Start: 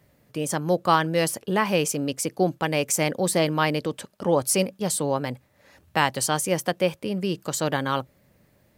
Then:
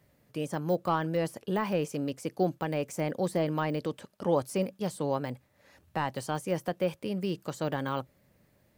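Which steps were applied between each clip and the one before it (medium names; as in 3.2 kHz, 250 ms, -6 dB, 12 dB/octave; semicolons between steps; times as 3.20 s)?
de-esser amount 100%; trim -5 dB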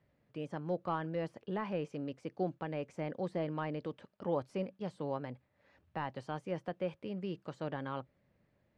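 low-pass 3.2 kHz 12 dB/octave; trim -7.5 dB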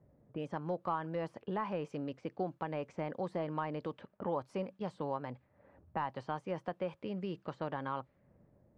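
level-controlled noise filter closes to 710 Hz, open at -35 dBFS; dynamic bell 1 kHz, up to +8 dB, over -53 dBFS, Q 1.5; compression 2:1, threshold -51 dBFS, peak gain reduction 14 dB; trim +8.5 dB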